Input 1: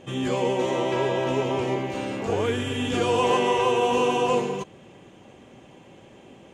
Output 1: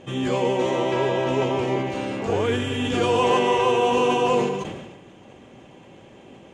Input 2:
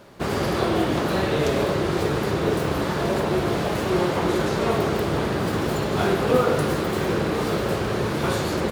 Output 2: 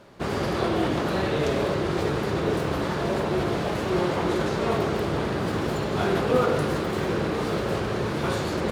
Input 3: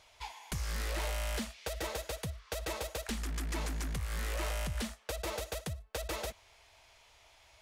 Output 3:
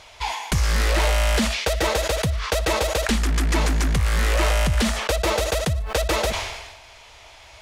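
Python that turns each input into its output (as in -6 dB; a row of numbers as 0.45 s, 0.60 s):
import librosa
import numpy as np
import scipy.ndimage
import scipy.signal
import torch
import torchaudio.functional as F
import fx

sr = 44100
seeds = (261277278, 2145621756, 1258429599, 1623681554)

y = fx.high_shelf(x, sr, hz=11000.0, db=-10.5)
y = fx.sustainer(y, sr, db_per_s=47.0)
y = y * 10.0 ** (-9 / 20.0) / np.max(np.abs(y))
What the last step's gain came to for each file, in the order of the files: +2.0 dB, -3.0 dB, +16.0 dB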